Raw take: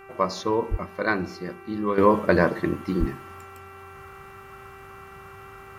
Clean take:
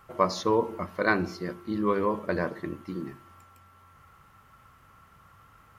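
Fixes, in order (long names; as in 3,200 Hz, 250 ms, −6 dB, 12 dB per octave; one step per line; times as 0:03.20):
hum removal 390.1 Hz, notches 7
0:00.70–0:00.82: high-pass filter 140 Hz 24 dB per octave
0:02.99–0:03.11: high-pass filter 140 Hz 24 dB per octave
level 0 dB, from 0:01.98 −9.5 dB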